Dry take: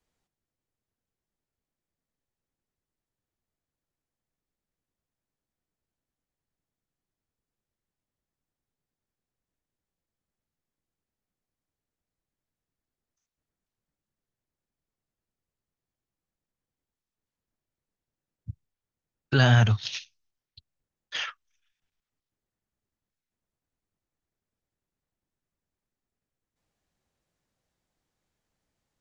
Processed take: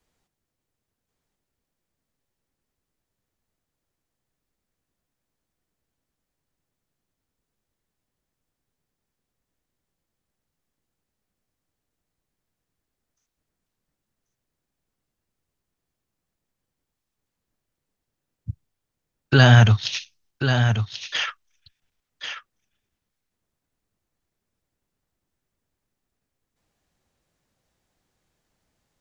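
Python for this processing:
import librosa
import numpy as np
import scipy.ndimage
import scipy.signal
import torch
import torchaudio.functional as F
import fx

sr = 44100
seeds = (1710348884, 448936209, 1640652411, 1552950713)

y = x + 10.0 ** (-7.5 / 20.0) * np.pad(x, (int(1087 * sr / 1000.0), 0))[:len(x)]
y = F.gain(torch.from_numpy(y), 6.5).numpy()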